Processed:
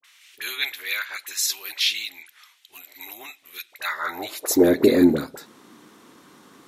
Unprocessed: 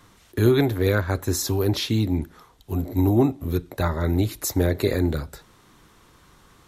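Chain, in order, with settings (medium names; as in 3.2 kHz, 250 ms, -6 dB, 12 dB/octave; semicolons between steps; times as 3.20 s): high-pass sweep 2.4 kHz -> 250 Hz, 3.76–4.72 s; phase dispersion highs, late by 43 ms, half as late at 980 Hz; trim +3 dB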